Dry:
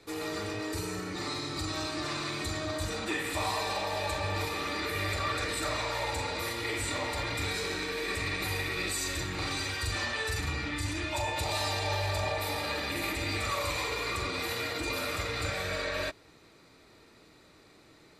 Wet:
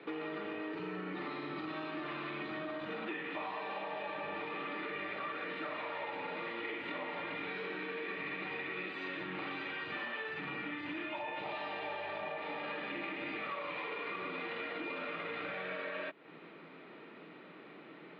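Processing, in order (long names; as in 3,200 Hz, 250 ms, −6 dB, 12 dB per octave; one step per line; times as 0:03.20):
Chebyshev band-pass filter 160–3,100 Hz, order 4
downward compressor, threshold −45 dBFS, peak gain reduction 15 dB
level +6.5 dB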